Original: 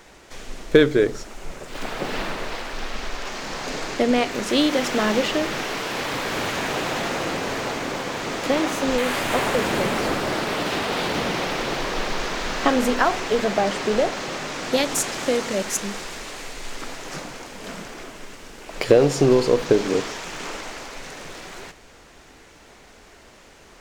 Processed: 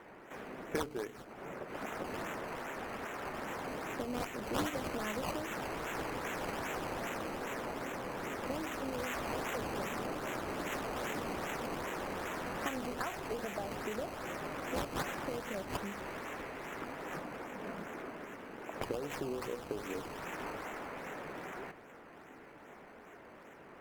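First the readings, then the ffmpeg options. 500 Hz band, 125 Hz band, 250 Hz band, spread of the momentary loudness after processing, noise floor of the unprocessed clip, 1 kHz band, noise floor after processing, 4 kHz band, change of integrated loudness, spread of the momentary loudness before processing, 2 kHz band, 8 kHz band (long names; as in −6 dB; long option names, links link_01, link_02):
−17.5 dB, −15.0 dB, −16.5 dB, 10 LU, −49 dBFS, −13.0 dB, −54 dBFS, −19.5 dB, −17.0 dB, 17 LU, −14.5 dB, −18.0 dB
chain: -filter_complex "[0:a]highpass=190,bass=frequency=250:gain=3,treble=frequency=4000:gain=-10,acrossover=split=2500[link_01][link_02];[link_01]acompressor=threshold=-36dB:ratio=5[link_03];[link_02]acrusher=samples=17:mix=1:aa=0.000001:lfo=1:lforange=17:lforate=2.5[link_04];[link_03][link_04]amix=inputs=2:normalize=0,volume=-3.5dB" -ar 48000 -c:a libopus -b:a 256k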